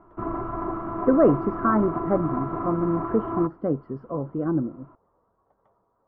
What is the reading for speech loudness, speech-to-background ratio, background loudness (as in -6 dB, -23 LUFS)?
-25.0 LUFS, 5.5 dB, -30.5 LUFS